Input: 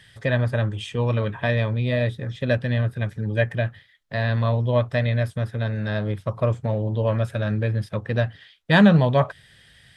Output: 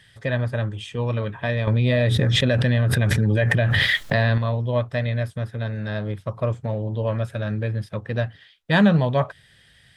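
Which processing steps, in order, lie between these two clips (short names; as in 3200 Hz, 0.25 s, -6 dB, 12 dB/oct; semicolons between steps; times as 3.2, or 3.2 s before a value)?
1.67–4.38 fast leveller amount 100%; gain -2 dB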